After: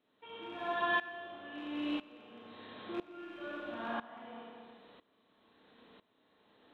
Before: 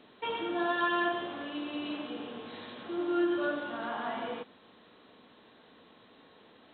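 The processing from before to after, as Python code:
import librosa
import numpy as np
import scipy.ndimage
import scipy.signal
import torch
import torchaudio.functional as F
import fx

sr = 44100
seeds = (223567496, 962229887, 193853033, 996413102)

y = fx.rattle_buzz(x, sr, strikes_db=-42.0, level_db=-36.0)
y = fx.rev_schroeder(y, sr, rt60_s=1.3, comb_ms=27, drr_db=-1.5)
y = fx.tremolo_decay(y, sr, direction='swelling', hz=1.0, depth_db=18)
y = y * librosa.db_to_amplitude(-4.0)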